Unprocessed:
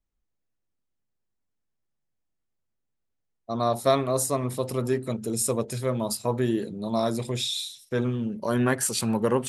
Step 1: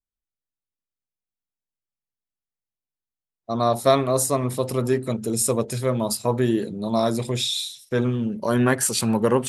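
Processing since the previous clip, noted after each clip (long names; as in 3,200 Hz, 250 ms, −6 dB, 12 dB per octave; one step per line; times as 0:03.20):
noise reduction from a noise print of the clip's start 17 dB
level +4 dB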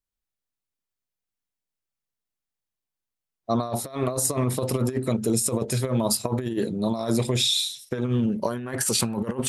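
compressor whose output falls as the input rises −24 dBFS, ratio −0.5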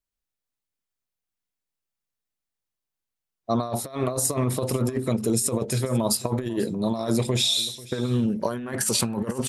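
single-tap delay 490 ms −20 dB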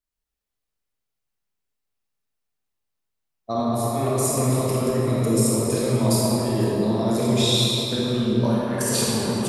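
convolution reverb RT60 3.8 s, pre-delay 26 ms, DRR −6.5 dB
level −3.5 dB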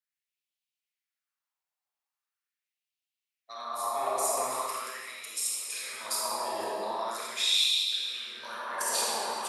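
auto-filter high-pass sine 0.41 Hz 790–2,800 Hz
level −5.5 dB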